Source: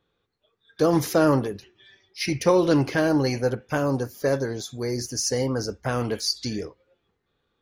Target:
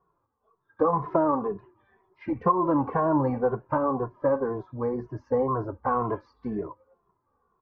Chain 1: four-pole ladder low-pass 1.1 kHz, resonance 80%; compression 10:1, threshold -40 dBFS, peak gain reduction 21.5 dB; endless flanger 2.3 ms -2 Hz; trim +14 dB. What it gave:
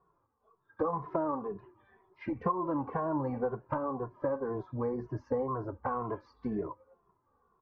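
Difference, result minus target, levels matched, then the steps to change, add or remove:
compression: peak gain reduction +9 dB
change: compression 10:1, threshold -30 dBFS, peak gain reduction 12.5 dB

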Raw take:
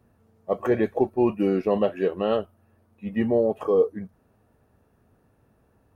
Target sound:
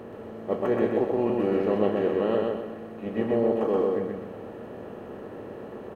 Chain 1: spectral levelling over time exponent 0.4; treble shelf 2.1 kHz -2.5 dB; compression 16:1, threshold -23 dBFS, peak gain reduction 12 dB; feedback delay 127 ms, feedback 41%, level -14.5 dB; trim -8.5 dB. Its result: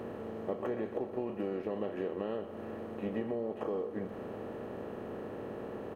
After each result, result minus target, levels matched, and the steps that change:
compression: peak gain reduction +12 dB; echo-to-direct -12 dB
remove: compression 16:1, threshold -23 dBFS, peak gain reduction 12 dB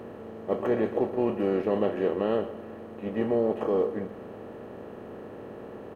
echo-to-direct -12 dB
change: feedback delay 127 ms, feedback 41%, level -2.5 dB

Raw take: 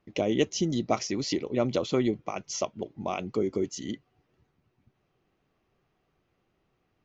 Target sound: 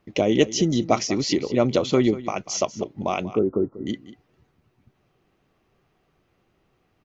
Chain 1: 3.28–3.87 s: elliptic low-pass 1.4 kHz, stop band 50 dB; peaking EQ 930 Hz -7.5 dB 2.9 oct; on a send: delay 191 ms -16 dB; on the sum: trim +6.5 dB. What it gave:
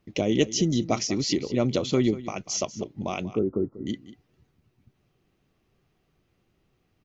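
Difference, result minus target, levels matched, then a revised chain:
1 kHz band -4.0 dB
3.28–3.87 s: elliptic low-pass 1.4 kHz, stop band 50 dB; on a send: delay 191 ms -16 dB; on the sum: trim +6.5 dB

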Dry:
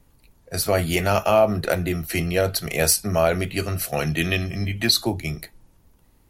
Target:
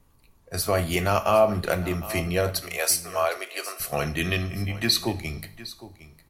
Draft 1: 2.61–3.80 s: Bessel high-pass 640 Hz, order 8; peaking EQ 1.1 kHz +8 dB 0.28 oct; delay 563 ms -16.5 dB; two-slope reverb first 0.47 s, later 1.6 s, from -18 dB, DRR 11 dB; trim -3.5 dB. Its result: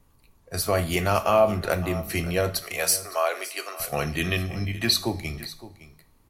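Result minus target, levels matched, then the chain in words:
echo 196 ms early
2.61–3.80 s: Bessel high-pass 640 Hz, order 8; peaking EQ 1.1 kHz +8 dB 0.28 oct; delay 759 ms -16.5 dB; two-slope reverb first 0.47 s, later 1.6 s, from -18 dB, DRR 11 dB; trim -3.5 dB

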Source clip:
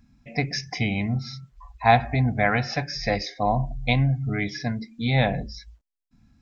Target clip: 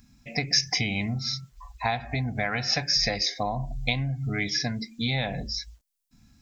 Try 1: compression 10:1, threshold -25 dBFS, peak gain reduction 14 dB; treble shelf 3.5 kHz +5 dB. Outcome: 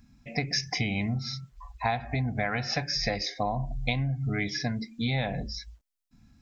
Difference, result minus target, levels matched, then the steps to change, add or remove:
8 kHz band -4.5 dB
change: treble shelf 3.5 kHz +15 dB

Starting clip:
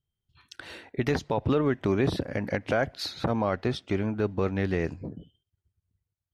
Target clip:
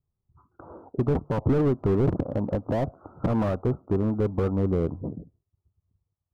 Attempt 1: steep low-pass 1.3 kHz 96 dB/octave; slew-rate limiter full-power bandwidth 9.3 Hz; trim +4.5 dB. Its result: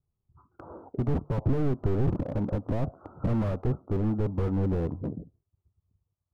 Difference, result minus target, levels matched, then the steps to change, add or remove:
slew-rate limiter: distortion +9 dB
change: slew-rate limiter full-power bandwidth 22 Hz

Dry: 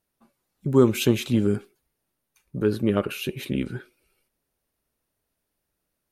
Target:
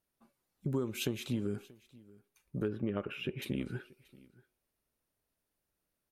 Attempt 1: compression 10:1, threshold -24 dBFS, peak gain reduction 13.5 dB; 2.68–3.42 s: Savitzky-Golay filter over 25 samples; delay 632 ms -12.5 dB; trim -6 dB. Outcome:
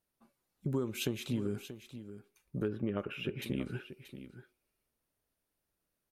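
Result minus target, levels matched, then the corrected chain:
echo-to-direct +10.5 dB
compression 10:1, threshold -24 dBFS, peak gain reduction 13.5 dB; 2.68–3.42 s: Savitzky-Golay filter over 25 samples; delay 632 ms -23 dB; trim -6 dB

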